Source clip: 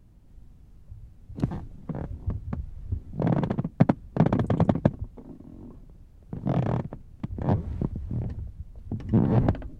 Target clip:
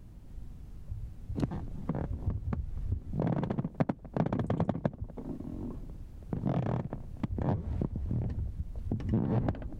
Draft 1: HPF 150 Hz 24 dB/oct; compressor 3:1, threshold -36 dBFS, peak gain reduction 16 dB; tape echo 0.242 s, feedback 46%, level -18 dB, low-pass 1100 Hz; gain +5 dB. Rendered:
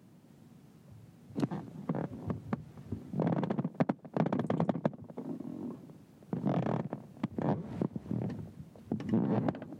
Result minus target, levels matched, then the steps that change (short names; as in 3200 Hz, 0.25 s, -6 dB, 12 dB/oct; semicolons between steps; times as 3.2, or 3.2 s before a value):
125 Hz band -3.5 dB
remove: HPF 150 Hz 24 dB/oct